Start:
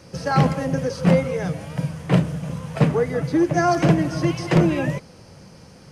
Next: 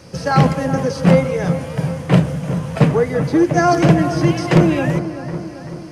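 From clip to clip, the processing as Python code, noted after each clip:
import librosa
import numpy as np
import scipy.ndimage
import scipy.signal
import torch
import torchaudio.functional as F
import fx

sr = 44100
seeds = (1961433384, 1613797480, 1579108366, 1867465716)

y = fx.echo_wet_lowpass(x, sr, ms=386, feedback_pct=57, hz=1700.0, wet_db=-10.5)
y = F.gain(torch.from_numpy(y), 4.5).numpy()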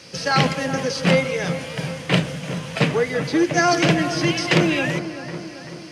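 y = fx.weighting(x, sr, curve='D')
y = F.gain(torch.from_numpy(y), -4.0).numpy()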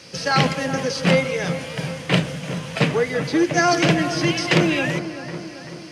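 y = x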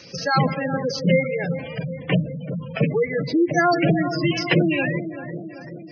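y = fx.spec_gate(x, sr, threshold_db=-15, keep='strong')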